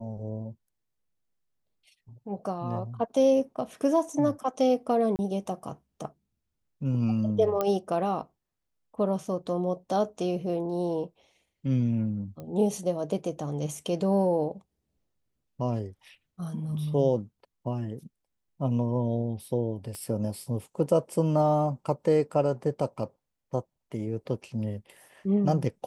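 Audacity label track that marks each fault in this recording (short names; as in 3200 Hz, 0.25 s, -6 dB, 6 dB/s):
5.160000	5.190000	gap 29 ms
7.610000	7.610000	pop -14 dBFS
12.400000	12.400000	pop -28 dBFS
19.950000	19.950000	pop -25 dBFS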